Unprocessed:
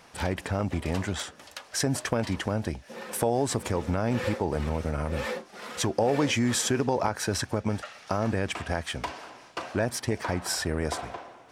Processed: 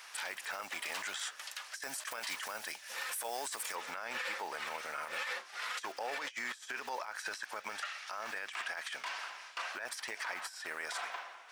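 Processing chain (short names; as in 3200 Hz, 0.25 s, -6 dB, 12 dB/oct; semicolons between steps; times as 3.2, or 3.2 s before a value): block floating point 7-bit; Chebyshev high-pass 1500 Hz, order 2; negative-ratio compressor -38 dBFS, ratio -0.5; high shelf 6700 Hz +3 dB, from 1.82 s +9 dB, from 3.75 s -5.5 dB; limiter -31 dBFS, peak gain reduction 12 dB; gain +2.5 dB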